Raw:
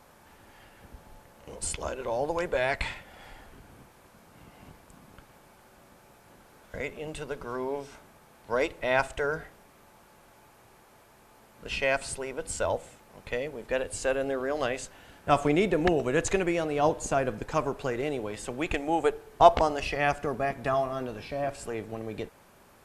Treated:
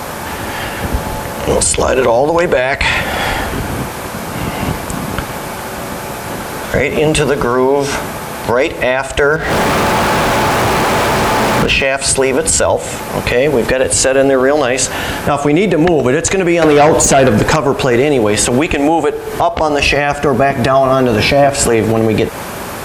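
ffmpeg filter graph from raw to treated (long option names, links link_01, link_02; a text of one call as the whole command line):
ffmpeg -i in.wav -filter_complex "[0:a]asettb=1/sr,asplit=3[link_01][link_02][link_03];[link_01]atrim=end=9.364[link_04];[link_02]atrim=start=9.36:end=11.85,asetpts=PTS-STARTPTS,afade=type=in:duration=0.004:curve=qsin,afade=type=out:start_time=2.486:duration=0.004:curve=qsin,aeval=exprs='val(0)+0.5*0.00944*sgn(val(0))':channel_layout=same,aemphasis=mode=reproduction:type=50kf,acompressor=threshold=-42dB:ratio=5:attack=3.2:release=140:knee=1:detection=peak[link_05];[link_03]atrim=start=11.846[link_06];[link_04][link_05]acrossfade=duration=0.004:curve1=hsin:curve2=qsin[link_07];[link_07][link_06]acrossfade=duration=0.004:curve1=qsin:curve2=hsin,asettb=1/sr,asplit=3[link_08][link_09][link_10];[link_08]atrim=end=16.624[link_11];[link_09]atrim=start=16.62:end=17.56,asetpts=PTS-STARTPTS,afade=type=in:duration=0.004:curve=qsin,afade=type=out:start_time=0.936:duration=0.004:curve=qsin,acompressor=threshold=-25dB:ratio=12:attack=3.2:release=140:knee=1:detection=peak,aeval=exprs='0.119*sin(PI/2*2.24*val(0)/0.119)':channel_layout=same[link_12];[link_10]atrim=start=17.556[link_13];[link_11][link_12]acrossfade=duration=0.004:curve1=hsin:curve2=qsin[link_14];[link_14][link_13]acrossfade=duration=0.004:curve1=qsin:curve2=hsin,highpass=49,acompressor=threshold=-36dB:ratio=20,alimiter=level_in=34.5dB:limit=-1dB:release=50:level=0:latency=1,volume=-1dB" out.wav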